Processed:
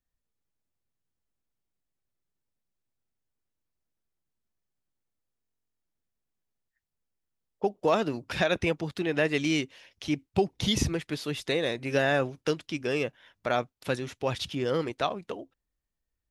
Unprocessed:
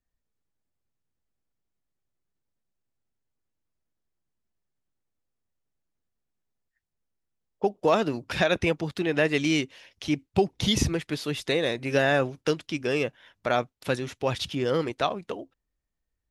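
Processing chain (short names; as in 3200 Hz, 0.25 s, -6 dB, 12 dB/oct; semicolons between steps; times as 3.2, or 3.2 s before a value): stuck buffer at 5.42, samples 1024, times 16; gain -2.5 dB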